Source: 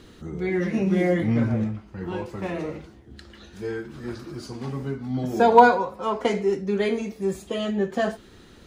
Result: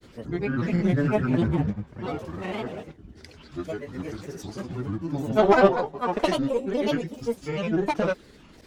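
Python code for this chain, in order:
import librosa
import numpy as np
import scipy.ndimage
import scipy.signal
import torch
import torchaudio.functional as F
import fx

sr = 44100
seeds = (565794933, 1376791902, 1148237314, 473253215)

y = fx.cheby_harmonics(x, sr, harmonics=(6,), levels_db=(-21,), full_scale_db=-1.5)
y = fx.granulator(y, sr, seeds[0], grain_ms=100.0, per_s=20.0, spray_ms=100.0, spread_st=7)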